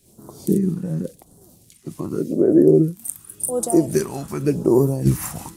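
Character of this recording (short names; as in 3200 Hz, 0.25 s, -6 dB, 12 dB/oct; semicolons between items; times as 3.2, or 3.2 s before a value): a quantiser's noise floor 12-bit, dither none; phasing stages 2, 0.89 Hz, lowest notch 390–2300 Hz; noise-modulated level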